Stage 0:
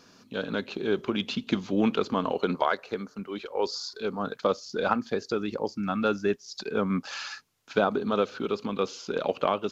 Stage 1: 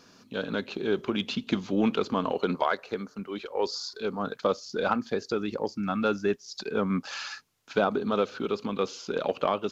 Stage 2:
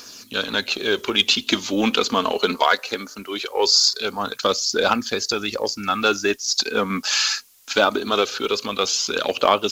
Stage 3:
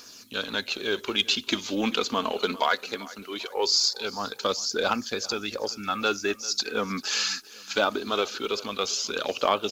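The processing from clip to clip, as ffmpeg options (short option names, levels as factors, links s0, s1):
-af "asoftclip=type=tanh:threshold=0.299"
-af "crystalizer=i=8:c=0,aphaser=in_gain=1:out_gain=1:delay=4.8:decay=0.34:speed=0.21:type=triangular,equalizer=f=160:t=o:w=0.41:g=-13,volume=1.58"
-af "aecho=1:1:394|788|1182:0.106|0.0392|0.0145,volume=0.473"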